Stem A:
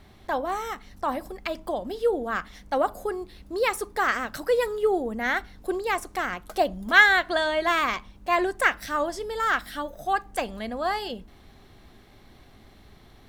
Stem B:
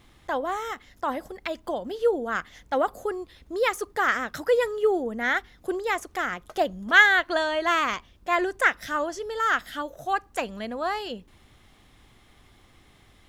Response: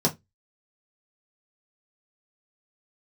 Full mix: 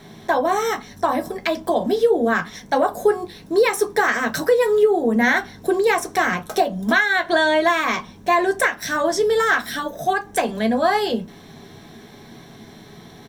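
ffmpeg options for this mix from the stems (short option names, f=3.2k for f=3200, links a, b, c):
-filter_complex "[0:a]acompressor=threshold=-24dB:ratio=6,volume=2dB,asplit=2[a][b];[b]volume=-6.5dB[c];[1:a]adelay=0.7,volume=-10dB[d];[2:a]atrim=start_sample=2205[e];[c][e]afir=irnorm=-1:irlink=0[f];[a][d][f]amix=inputs=3:normalize=0,tiltshelf=f=820:g=-4,alimiter=limit=-7dB:level=0:latency=1:release=355"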